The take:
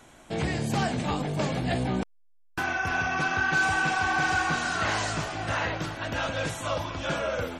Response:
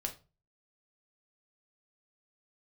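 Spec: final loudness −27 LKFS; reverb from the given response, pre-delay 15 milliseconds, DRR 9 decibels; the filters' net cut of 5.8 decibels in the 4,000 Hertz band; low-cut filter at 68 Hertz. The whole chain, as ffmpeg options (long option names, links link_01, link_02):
-filter_complex "[0:a]highpass=68,equalizer=frequency=4000:width_type=o:gain=-8,asplit=2[link_01][link_02];[1:a]atrim=start_sample=2205,adelay=15[link_03];[link_02][link_03]afir=irnorm=-1:irlink=0,volume=-9.5dB[link_04];[link_01][link_04]amix=inputs=2:normalize=0,volume=1dB"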